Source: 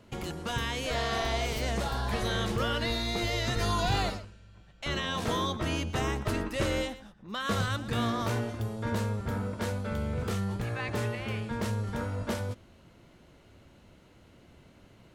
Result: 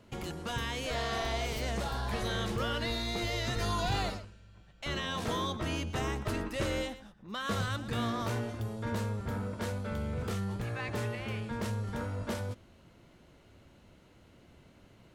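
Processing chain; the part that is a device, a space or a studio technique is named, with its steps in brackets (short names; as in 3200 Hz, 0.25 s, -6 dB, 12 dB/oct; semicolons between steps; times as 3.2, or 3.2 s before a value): parallel distortion (in parallel at -10 dB: hard clip -33.5 dBFS, distortion -7 dB); on the sum: gain -4.5 dB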